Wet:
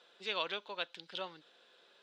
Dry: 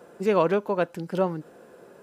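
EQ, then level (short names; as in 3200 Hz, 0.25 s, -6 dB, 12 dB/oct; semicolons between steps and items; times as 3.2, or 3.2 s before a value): band-pass 3600 Hz, Q 6.1; air absorption 57 m; +12.5 dB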